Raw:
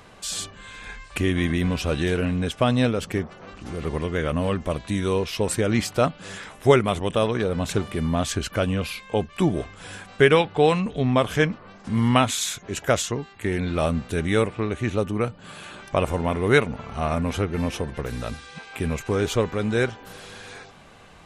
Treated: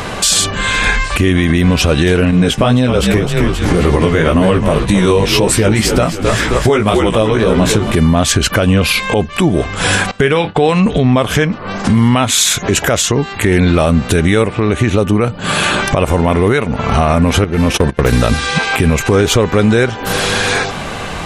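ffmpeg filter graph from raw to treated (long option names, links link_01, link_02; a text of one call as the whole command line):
ffmpeg -i in.wav -filter_complex "[0:a]asettb=1/sr,asplit=3[link_01][link_02][link_03];[link_01]atrim=end=2.314[link_04];[link_02]atrim=start=2.31:end=7.95,asetpts=PTS-STARTPTS,afade=type=in:duration=0.004:curve=qsin,afade=type=out:start_time=5.636:duration=0.004:curve=qsin,agate=range=-9dB:threshold=-40dB:ratio=16:release=100:detection=peak,asplit=6[link_05][link_06][link_07][link_08][link_09][link_10];[link_06]adelay=263,afreqshift=-55,volume=-10dB[link_11];[link_07]adelay=526,afreqshift=-110,volume=-16dB[link_12];[link_08]adelay=789,afreqshift=-165,volume=-22dB[link_13];[link_09]adelay=1052,afreqshift=-220,volume=-28.1dB[link_14];[link_10]adelay=1315,afreqshift=-275,volume=-34.1dB[link_15];[link_05][link_11][link_12][link_13][link_14][link_15]amix=inputs=6:normalize=0,atrim=end_sample=248724,flanger=delay=15.5:depth=3.8:speed=1.9[link_16];[link_03]atrim=start=7.946[link_17];[link_04][link_16]acrossfade=duration=0.004:curve1=hsin:curve2=qsin[link_18];[link_18][link_17]acrossfade=duration=0.004:curve1=qsin:curve2=hsin,asettb=1/sr,asplit=3[link_19][link_20][link_21];[link_19]atrim=end=10.114[link_22];[link_20]atrim=start=10.11:end=10.69,asetpts=PTS-STARTPTS,afade=type=in:duration=0.004:curve=qsin,afade=type=out:start_time=0.576:duration=0.004:curve=qsin,agate=range=-20dB:threshold=-38dB:ratio=16:release=100:detection=peak,asplit=2[link_23][link_24];[link_24]adelay=30,volume=-13.5dB[link_25];[link_23][link_25]amix=inputs=2:normalize=0,atrim=end_sample=25578,acompressor=threshold=-30dB:ratio=1.5:attack=3.2:release=140:knee=1:detection=peak[link_26];[link_21]atrim=start=10.686[link_27];[link_22][link_26]acrossfade=duration=0.004:curve1=hsin:curve2=qsin[link_28];[link_28][link_27]acrossfade=duration=0.004:curve1=qsin:curve2=hsin,asettb=1/sr,asplit=3[link_29][link_30][link_31];[link_29]atrim=end=17.444[link_32];[link_30]atrim=start=17.44:end=18.26,asetpts=PTS-STARTPTS,afade=type=in:duration=0.004:curve=qsin,afade=type=out:start_time=0.816:duration=0.004:curve=qsin,agate=range=-27dB:threshold=-32dB:ratio=16:release=100:detection=peak,acompressor=threshold=-32dB:ratio=2.5:attack=3.2:release=140:knee=1:detection=peak,volume=27.5dB,asoftclip=hard,volume=-27.5dB[link_33];[link_31]atrim=start=18.256[link_34];[link_32][link_33]acrossfade=duration=0.004:curve1=hsin:curve2=qsin[link_35];[link_35][link_34]acrossfade=duration=0.004:curve1=qsin:curve2=hsin,acompressor=threshold=-33dB:ratio=6,alimiter=level_in=27.5dB:limit=-1dB:release=50:level=0:latency=1,volume=-1dB" out.wav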